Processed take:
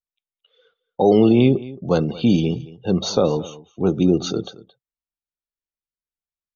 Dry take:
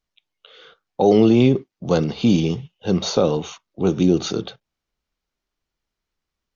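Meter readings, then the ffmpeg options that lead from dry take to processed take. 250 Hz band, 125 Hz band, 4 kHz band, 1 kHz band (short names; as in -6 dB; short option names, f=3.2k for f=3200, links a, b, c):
0.0 dB, 0.0 dB, -1.0 dB, 0.0 dB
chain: -filter_complex "[0:a]afftdn=nr=21:nf=-35,asplit=2[a][b];[b]aecho=0:1:221:0.112[c];[a][c]amix=inputs=2:normalize=0"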